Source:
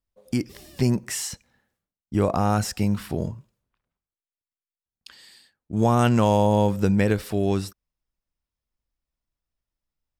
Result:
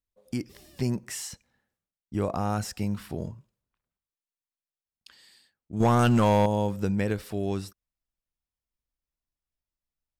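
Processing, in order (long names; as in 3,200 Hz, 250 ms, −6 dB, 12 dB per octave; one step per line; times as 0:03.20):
0:05.80–0:06.46: leveller curve on the samples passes 2
level −6.5 dB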